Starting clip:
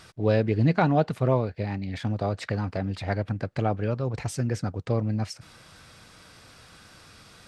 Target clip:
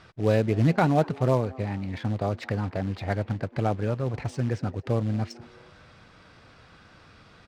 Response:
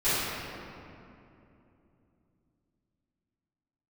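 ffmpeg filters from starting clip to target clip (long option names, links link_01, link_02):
-filter_complex "[0:a]acrusher=bits=5:mode=log:mix=0:aa=0.000001,asplit=4[link_01][link_02][link_03][link_04];[link_02]adelay=224,afreqshift=130,volume=-23dB[link_05];[link_03]adelay=448,afreqshift=260,volume=-29.6dB[link_06];[link_04]adelay=672,afreqshift=390,volume=-36.1dB[link_07];[link_01][link_05][link_06][link_07]amix=inputs=4:normalize=0,adynamicsmooth=sensitivity=4:basefreq=3500"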